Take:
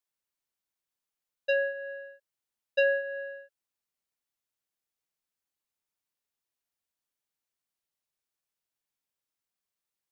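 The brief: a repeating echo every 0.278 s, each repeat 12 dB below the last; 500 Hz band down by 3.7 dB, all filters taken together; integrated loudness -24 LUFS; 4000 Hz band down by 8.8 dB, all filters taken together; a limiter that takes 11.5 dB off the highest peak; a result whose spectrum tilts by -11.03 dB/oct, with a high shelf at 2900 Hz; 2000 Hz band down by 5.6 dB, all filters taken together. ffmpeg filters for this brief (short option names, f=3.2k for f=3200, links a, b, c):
-af "equalizer=f=500:t=o:g=-3.5,equalizer=f=2k:t=o:g=-3.5,highshelf=f=2.9k:g=-7,equalizer=f=4k:t=o:g=-6,alimiter=level_in=10dB:limit=-24dB:level=0:latency=1,volume=-10dB,aecho=1:1:278|556|834:0.251|0.0628|0.0157,volume=17.5dB"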